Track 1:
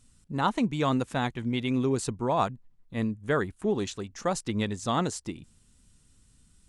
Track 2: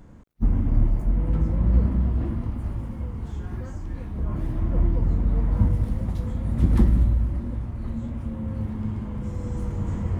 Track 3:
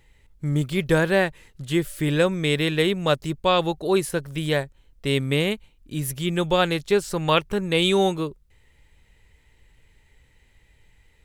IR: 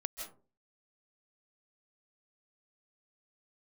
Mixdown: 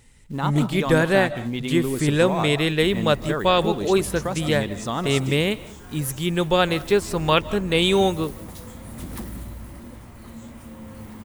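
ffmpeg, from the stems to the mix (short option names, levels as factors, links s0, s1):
-filter_complex "[0:a]volume=1.12,asplit=2[s0][s1];[s1]volume=0.501[s2];[1:a]aemphasis=mode=production:type=riaa,asoftclip=type=tanh:threshold=0.0631,adelay=2400,volume=1[s3];[2:a]volume=0.944,asplit=2[s4][s5];[s5]volume=0.251[s6];[s0][s3]amix=inputs=2:normalize=0,acrusher=bits=6:mode=log:mix=0:aa=0.000001,acompressor=threshold=0.0316:ratio=3,volume=1[s7];[3:a]atrim=start_sample=2205[s8];[s2][s6]amix=inputs=2:normalize=0[s9];[s9][s8]afir=irnorm=-1:irlink=0[s10];[s4][s7][s10]amix=inputs=3:normalize=0"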